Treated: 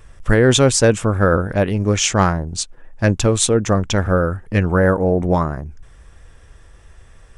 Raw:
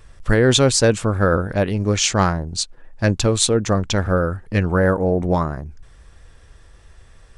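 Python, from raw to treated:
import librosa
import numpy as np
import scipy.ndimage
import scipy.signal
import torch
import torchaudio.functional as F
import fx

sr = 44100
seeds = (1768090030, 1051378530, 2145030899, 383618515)

y = fx.peak_eq(x, sr, hz=4300.0, db=-7.0, octaves=0.41)
y = F.gain(torch.from_numpy(y), 2.0).numpy()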